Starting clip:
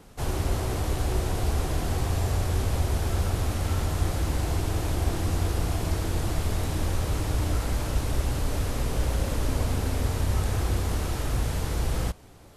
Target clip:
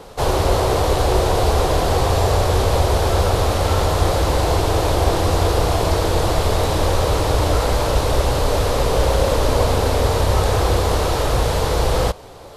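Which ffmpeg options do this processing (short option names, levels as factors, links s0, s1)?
-af "equalizer=f=250:t=o:w=1:g=-4,equalizer=f=500:t=o:w=1:g=11,equalizer=f=1000:t=o:w=1:g=7,equalizer=f=4000:t=o:w=1:g=7,volume=2.24"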